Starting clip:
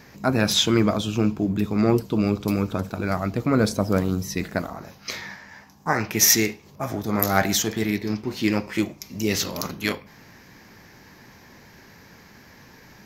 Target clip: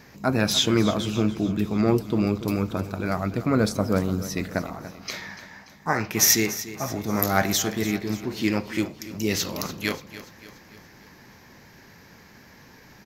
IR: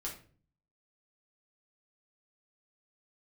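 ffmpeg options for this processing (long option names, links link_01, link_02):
-af "aecho=1:1:290|580|870|1160|1450:0.188|0.0942|0.0471|0.0235|0.0118,volume=-1.5dB"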